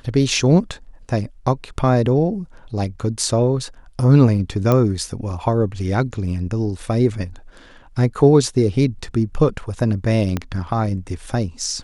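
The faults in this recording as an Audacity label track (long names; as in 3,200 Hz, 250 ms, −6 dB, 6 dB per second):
4.720000	4.720000	click −6 dBFS
10.370000	10.370000	click −9 dBFS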